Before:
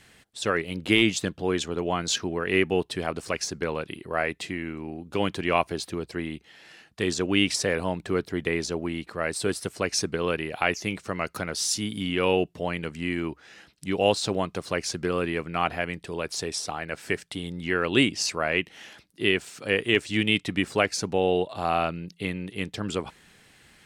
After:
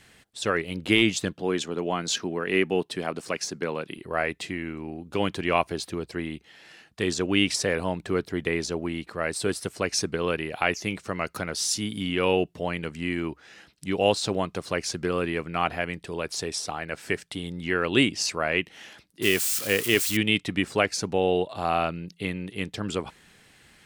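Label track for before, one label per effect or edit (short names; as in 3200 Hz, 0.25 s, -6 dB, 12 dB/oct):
1.330000	3.980000	Chebyshev high-pass 170 Hz
19.220000	20.170000	switching spikes of -21 dBFS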